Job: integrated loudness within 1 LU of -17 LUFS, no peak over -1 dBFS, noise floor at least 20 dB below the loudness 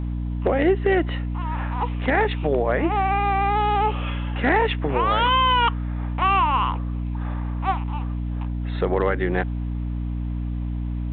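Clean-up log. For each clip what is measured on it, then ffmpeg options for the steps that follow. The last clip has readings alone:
hum 60 Hz; highest harmonic 300 Hz; hum level -24 dBFS; loudness -23.0 LUFS; peak level -8.5 dBFS; loudness target -17.0 LUFS
-> -af "bandreject=f=60:t=h:w=6,bandreject=f=120:t=h:w=6,bandreject=f=180:t=h:w=6,bandreject=f=240:t=h:w=6,bandreject=f=300:t=h:w=6"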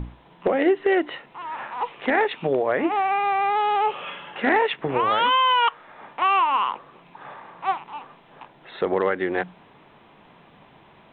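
hum not found; loudness -22.5 LUFS; peak level -9.5 dBFS; loudness target -17.0 LUFS
-> -af "volume=1.88"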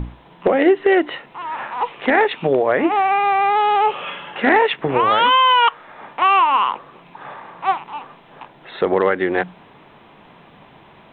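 loudness -17.0 LUFS; peak level -4.0 dBFS; noise floor -47 dBFS

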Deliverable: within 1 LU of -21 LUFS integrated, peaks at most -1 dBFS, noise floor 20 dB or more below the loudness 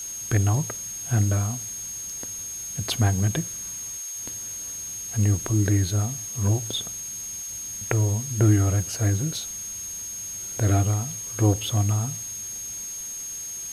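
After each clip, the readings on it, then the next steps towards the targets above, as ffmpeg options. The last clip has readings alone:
steady tone 6.5 kHz; tone level -32 dBFS; noise floor -35 dBFS; noise floor target -46 dBFS; loudness -26.0 LUFS; peak level -5.0 dBFS; loudness target -21.0 LUFS
-> -af "bandreject=f=6500:w=30"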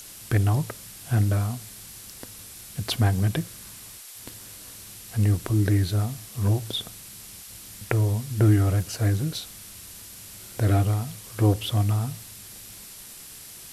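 steady tone not found; noise floor -44 dBFS; noise floor target -45 dBFS
-> -af "afftdn=nr=6:nf=-44"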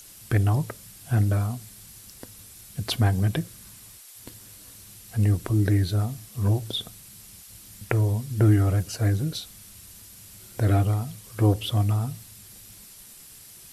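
noise floor -47 dBFS; loudness -25.0 LUFS; peak level -5.5 dBFS; loudness target -21.0 LUFS
-> -af "volume=1.58"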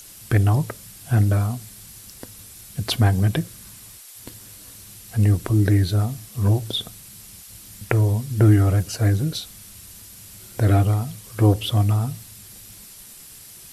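loudness -21.0 LUFS; peak level -1.5 dBFS; noise floor -44 dBFS

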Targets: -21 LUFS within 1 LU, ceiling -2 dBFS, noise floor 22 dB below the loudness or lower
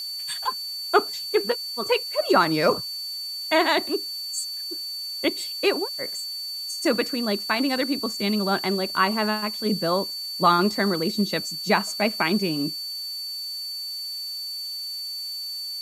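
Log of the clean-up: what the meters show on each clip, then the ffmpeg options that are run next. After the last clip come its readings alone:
steady tone 4.5 kHz; tone level -30 dBFS; noise floor -33 dBFS; noise floor target -47 dBFS; loudness -24.5 LUFS; peak level -4.0 dBFS; loudness target -21.0 LUFS
-> -af "bandreject=f=4500:w=30"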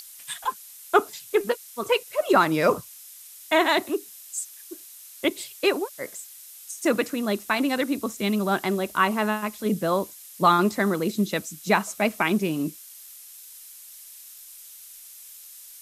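steady tone not found; noise floor -46 dBFS; noise floor target -47 dBFS
-> -af "afftdn=nr=6:nf=-46"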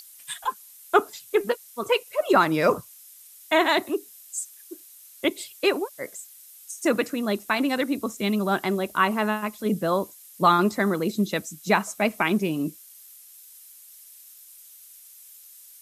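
noise floor -49 dBFS; loudness -25.0 LUFS; peak level -4.5 dBFS; loudness target -21.0 LUFS
-> -af "volume=1.58,alimiter=limit=0.794:level=0:latency=1"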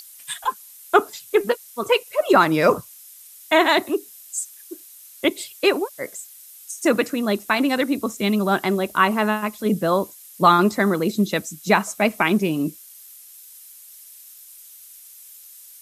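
loudness -21.0 LUFS; peak level -2.0 dBFS; noise floor -45 dBFS

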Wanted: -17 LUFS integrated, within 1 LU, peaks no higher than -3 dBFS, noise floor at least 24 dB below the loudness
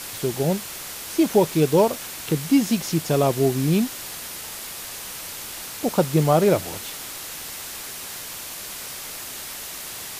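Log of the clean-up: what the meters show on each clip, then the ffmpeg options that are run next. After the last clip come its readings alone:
noise floor -35 dBFS; noise floor target -48 dBFS; loudness -24.0 LUFS; peak level -5.5 dBFS; loudness target -17.0 LUFS
-> -af "afftdn=nr=13:nf=-35"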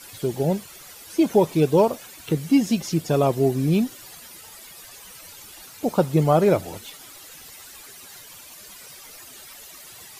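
noise floor -44 dBFS; noise floor target -46 dBFS
-> -af "afftdn=nr=6:nf=-44"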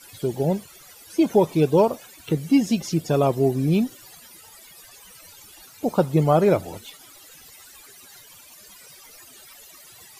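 noise floor -48 dBFS; loudness -21.5 LUFS; peak level -6.0 dBFS; loudness target -17.0 LUFS
-> -af "volume=1.68,alimiter=limit=0.708:level=0:latency=1"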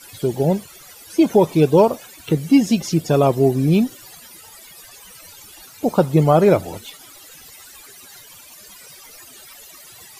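loudness -17.5 LUFS; peak level -3.0 dBFS; noise floor -43 dBFS

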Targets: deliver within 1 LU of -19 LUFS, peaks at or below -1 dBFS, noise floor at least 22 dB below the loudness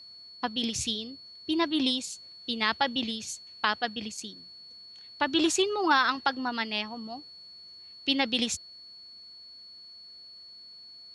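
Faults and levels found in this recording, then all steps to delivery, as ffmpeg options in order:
steady tone 4.4 kHz; tone level -46 dBFS; loudness -28.5 LUFS; peak level -11.0 dBFS; loudness target -19.0 LUFS
-> -af "bandreject=f=4400:w=30"
-af "volume=2.99"

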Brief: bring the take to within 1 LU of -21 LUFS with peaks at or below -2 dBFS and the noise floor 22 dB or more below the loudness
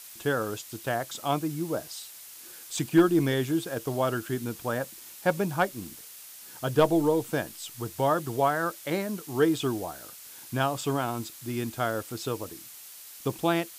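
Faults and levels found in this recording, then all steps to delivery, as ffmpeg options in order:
noise floor -46 dBFS; noise floor target -51 dBFS; loudness -28.5 LUFS; peak level -11.0 dBFS; loudness target -21.0 LUFS
-> -af "afftdn=nr=6:nf=-46"
-af "volume=2.37"

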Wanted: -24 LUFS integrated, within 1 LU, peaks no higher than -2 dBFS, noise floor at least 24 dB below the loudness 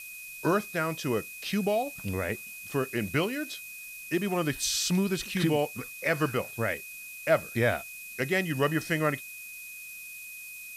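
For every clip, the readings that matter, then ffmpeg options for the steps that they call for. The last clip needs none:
steady tone 2.5 kHz; tone level -42 dBFS; noise floor -43 dBFS; noise floor target -54 dBFS; loudness -29.5 LUFS; peak level -12.5 dBFS; loudness target -24.0 LUFS
-> -af "bandreject=f=2500:w=30"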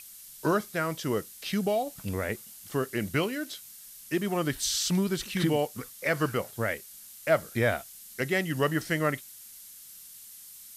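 steady tone not found; noise floor -48 dBFS; noise floor target -54 dBFS
-> -af "afftdn=nr=6:nf=-48"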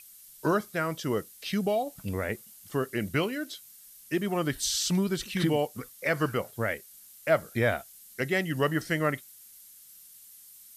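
noise floor -52 dBFS; noise floor target -54 dBFS
-> -af "afftdn=nr=6:nf=-52"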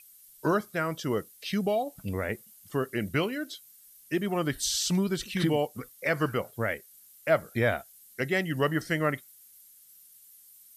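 noise floor -56 dBFS; loudness -30.0 LUFS; peak level -12.5 dBFS; loudness target -24.0 LUFS
-> -af "volume=2"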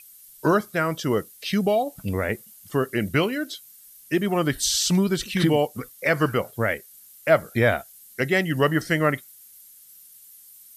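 loudness -24.0 LUFS; peak level -6.5 dBFS; noise floor -50 dBFS

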